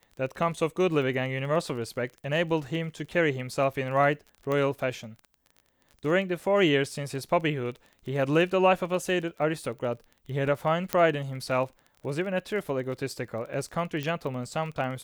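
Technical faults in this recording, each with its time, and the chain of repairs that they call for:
crackle 23 per s -36 dBFS
4.52 s: pop -18 dBFS
10.93 s: pop -9 dBFS
14.03 s: pop -19 dBFS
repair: de-click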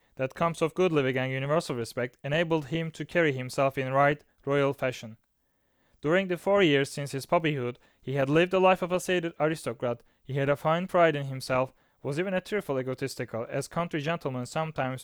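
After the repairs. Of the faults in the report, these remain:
nothing left

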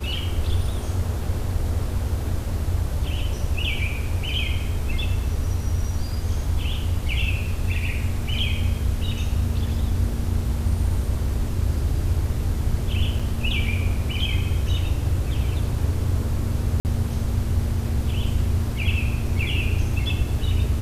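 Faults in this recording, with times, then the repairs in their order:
13.19–13.20 s: dropout 5.2 ms
16.80–16.85 s: dropout 49 ms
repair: interpolate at 13.19 s, 5.2 ms; interpolate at 16.80 s, 49 ms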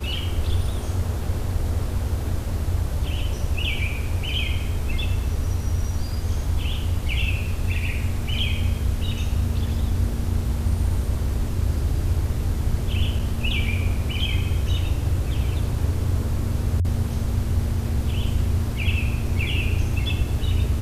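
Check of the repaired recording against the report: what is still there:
nothing left

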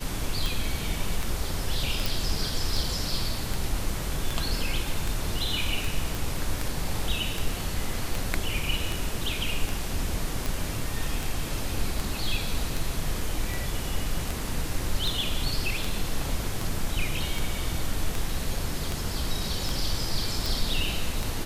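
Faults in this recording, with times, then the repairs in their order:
tick 78 rpm
2.06 s: pop
6.15 s: pop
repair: de-click

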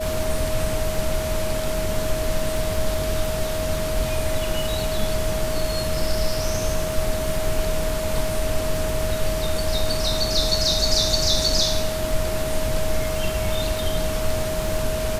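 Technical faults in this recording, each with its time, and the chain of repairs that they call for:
crackle 27 per s -27 dBFS
whine 630 Hz -26 dBFS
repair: de-click; band-stop 630 Hz, Q 30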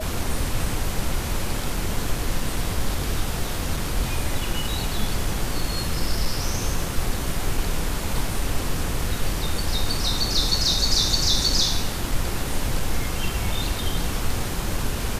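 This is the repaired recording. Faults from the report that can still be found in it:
nothing left

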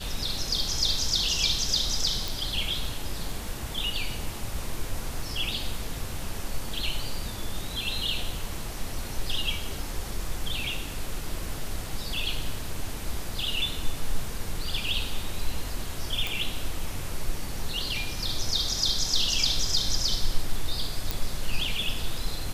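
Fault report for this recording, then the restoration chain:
2.28 s: pop
16.27 s: pop
21.11 s: pop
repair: de-click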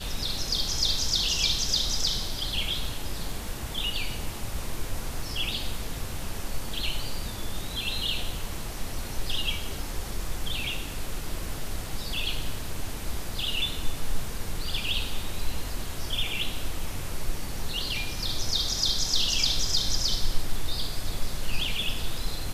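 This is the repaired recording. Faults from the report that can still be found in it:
nothing left

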